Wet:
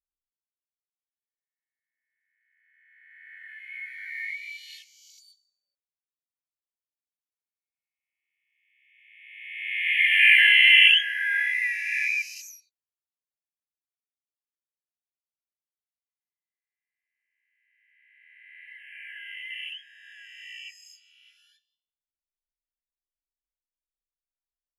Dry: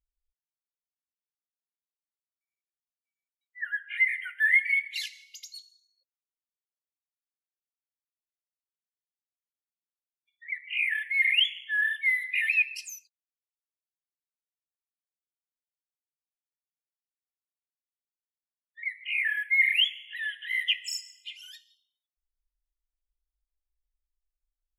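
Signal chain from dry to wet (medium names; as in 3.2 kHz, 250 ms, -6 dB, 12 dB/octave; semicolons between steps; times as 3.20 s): reverse spectral sustain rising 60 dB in 2.09 s; Doppler pass-by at 10.15 s, 16 m/s, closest 5.8 m; trim +7.5 dB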